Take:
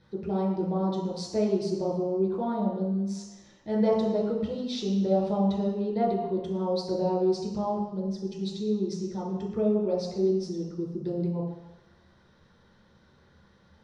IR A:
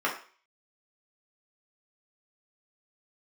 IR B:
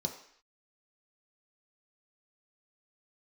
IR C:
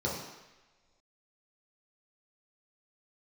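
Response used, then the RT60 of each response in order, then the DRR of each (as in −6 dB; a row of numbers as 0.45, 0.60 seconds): C; 0.40 s, non-exponential decay, non-exponential decay; −4.5, 2.5, −5.5 decibels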